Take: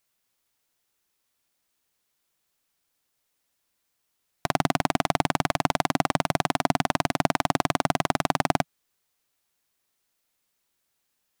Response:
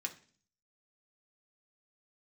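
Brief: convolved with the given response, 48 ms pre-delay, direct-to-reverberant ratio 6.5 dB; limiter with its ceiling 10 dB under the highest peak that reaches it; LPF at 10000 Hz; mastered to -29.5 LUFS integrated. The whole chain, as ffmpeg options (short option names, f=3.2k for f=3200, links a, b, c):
-filter_complex "[0:a]lowpass=10k,alimiter=limit=-12dB:level=0:latency=1,asplit=2[a][b];[1:a]atrim=start_sample=2205,adelay=48[c];[b][c]afir=irnorm=-1:irlink=0,volume=-6.5dB[d];[a][d]amix=inputs=2:normalize=0,volume=4.5dB"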